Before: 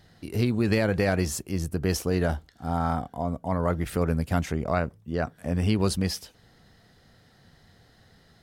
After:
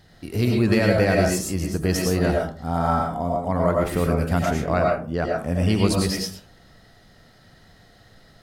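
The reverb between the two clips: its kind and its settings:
comb and all-pass reverb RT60 0.41 s, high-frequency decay 0.45×, pre-delay 65 ms, DRR −0.5 dB
level +2.5 dB

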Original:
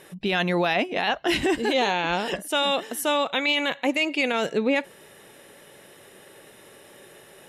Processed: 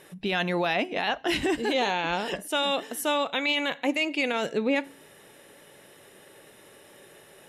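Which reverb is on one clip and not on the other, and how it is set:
feedback delay network reverb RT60 0.43 s, low-frequency decay 1.25×, high-frequency decay 0.9×, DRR 18.5 dB
level −3 dB

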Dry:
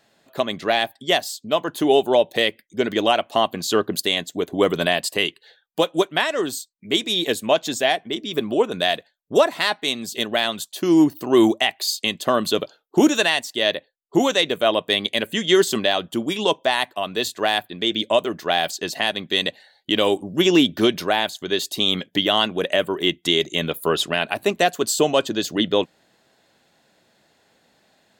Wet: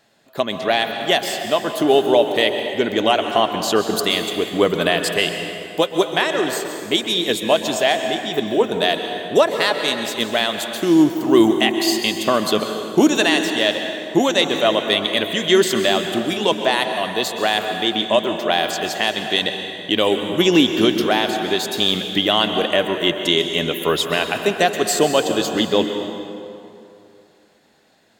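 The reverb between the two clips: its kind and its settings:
dense smooth reverb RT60 2.7 s, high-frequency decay 0.65×, pre-delay 115 ms, DRR 5.5 dB
level +1.5 dB

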